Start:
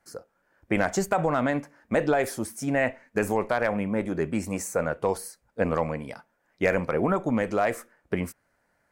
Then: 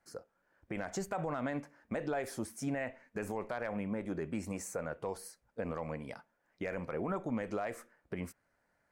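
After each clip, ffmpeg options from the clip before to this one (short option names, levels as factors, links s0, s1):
-af "highshelf=f=10000:g=-6.5,alimiter=limit=0.0944:level=0:latency=1:release=151,volume=0.501"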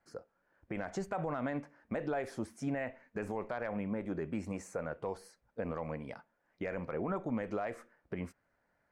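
-af "aemphasis=mode=reproduction:type=50fm"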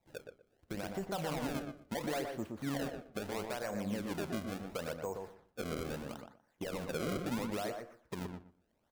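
-filter_complex "[0:a]acrusher=samples=28:mix=1:aa=0.000001:lfo=1:lforange=44.8:lforate=0.74,asplit=2[s0][s1];[s1]adelay=121,lowpass=f=1600:p=1,volume=0.631,asplit=2[s2][s3];[s3]adelay=121,lowpass=f=1600:p=1,volume=0.2,asplit=2[s4][s5];[s5]adelay=121,lowpass=f=1600:p=1,volume=0.2[s6];[s0][s2][s4][s6]amix=inputs=4:normalize=0,volume=0.794"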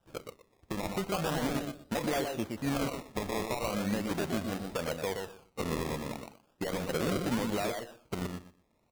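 -af "acrusher=samples=20:mix=1:aa=0.000001:lfo=1:lforange=20:lforate=0.38,volume=1.88"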